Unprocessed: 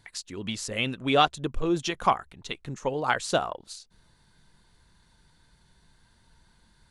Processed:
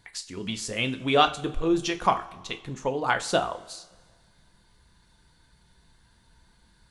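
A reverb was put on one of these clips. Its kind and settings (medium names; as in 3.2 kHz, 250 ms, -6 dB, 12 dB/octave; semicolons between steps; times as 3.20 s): two-slope reverb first 0.33 s, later 1.7 s, from -18 dB, DRR 6.5 dB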